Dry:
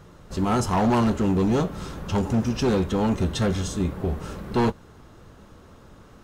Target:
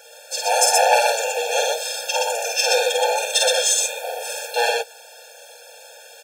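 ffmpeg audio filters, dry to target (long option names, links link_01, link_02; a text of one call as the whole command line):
ffmpeg -i in.wav -af "aecho=1:1:49.56|122.4:0.708|0.794,aexciter=amount=1.6:drive=9.4:freq=2000,afftfilt=real='re*eq(mod(floor(b*sr/1024/460),2),1)':imag='im*eq(mod(floor(b*sr/1024/460),2),1)':win_size=1024:overlap=0.75,volume=7dB" out.wav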